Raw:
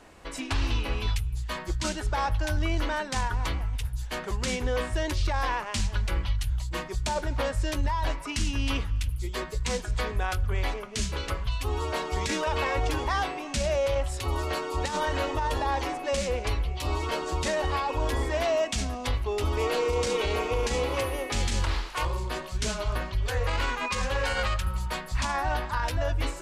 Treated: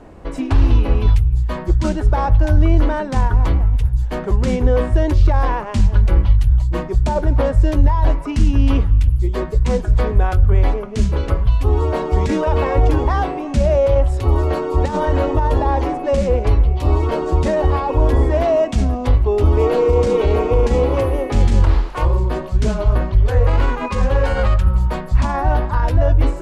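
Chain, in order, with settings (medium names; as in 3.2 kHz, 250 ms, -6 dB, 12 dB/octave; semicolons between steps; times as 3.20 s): tilt shelf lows +10 dB, about 1.2 kHz; trim +5 dB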